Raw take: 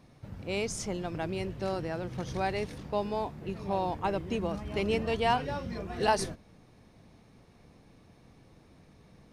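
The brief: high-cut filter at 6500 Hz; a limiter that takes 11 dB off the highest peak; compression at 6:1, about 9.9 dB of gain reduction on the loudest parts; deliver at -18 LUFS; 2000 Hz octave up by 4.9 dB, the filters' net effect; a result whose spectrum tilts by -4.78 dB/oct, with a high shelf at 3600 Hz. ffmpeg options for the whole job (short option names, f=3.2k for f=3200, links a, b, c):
-af "lowpass=6.5k,equalizer=f=2k:t=o:g=4.5,highshelf=f=3.6k:g=6.5,acompressor=threshold=-30dB:ratio=6,volume=21.5dB,alimiter=limit=-8dB:level=0:latency=1"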